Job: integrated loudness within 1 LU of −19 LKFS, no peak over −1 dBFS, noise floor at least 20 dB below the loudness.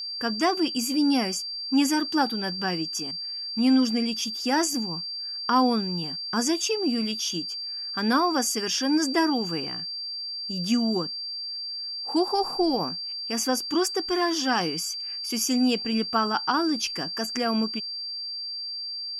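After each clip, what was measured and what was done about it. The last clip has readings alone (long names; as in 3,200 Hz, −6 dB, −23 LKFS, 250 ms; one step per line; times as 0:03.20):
crackle rate 32 per second; interfering tone 4,700 Hz; level of the tone −31 dBFS; integrated loudness −25.5 LKFS; sample peak −9.5 dBFS; target loudness −19.0 LKFS
→ click removal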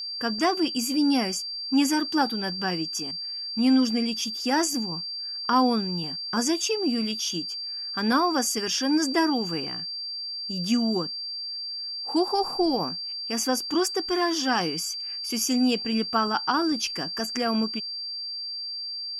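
crackle rate 0 per second; interfering tone 4,700 Hz; level of the tone −31 dBFS
→ notch filter 4,700 Hz, Q 30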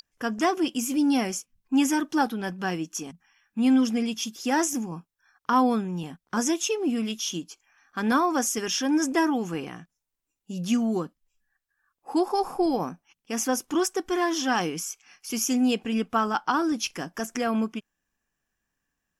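interfering tone none found; integrated loudness −26.5 LKFS; sample peak −10.5 dBFS; target loudness −19.0 LKFS
→ level +7.5 dB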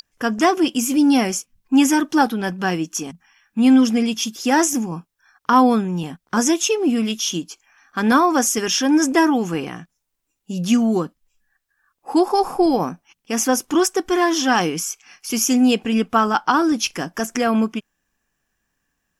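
integrated loudness −19.0 LKFS; sample peak −3.0 dBFS; background noise floor −75 dBFS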